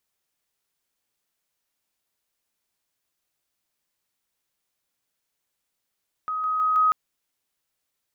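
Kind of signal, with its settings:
level staircase 1,260 Hz −25 dBFS, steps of 3 dB, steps 4, 0.16 s 0.00 s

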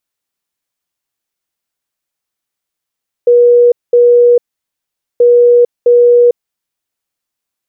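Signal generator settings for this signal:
beeps in groups sine 482 Hz, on 0.45 s, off 0.21 s, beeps 2, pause 0.82 s, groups 2, −3 dBFS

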